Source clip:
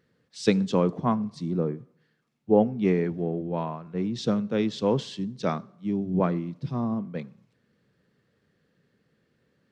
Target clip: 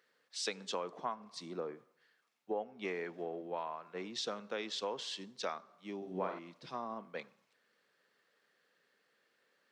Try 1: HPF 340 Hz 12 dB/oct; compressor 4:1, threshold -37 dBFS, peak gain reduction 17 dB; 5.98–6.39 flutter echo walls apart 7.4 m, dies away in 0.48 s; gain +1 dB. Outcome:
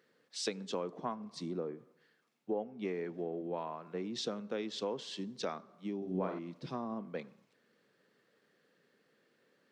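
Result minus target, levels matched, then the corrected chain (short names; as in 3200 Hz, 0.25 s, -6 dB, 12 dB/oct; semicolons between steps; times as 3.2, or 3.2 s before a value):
250 Hz band +5.5 dB
HPF 710 Hz 12 dB/oct; compressor 4:1, threshold -37 dBFS, peak gain reduction 13 dB; 5.98–6.39 flutter echo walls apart 7.4 m, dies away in 0.48 s; gain +1 dB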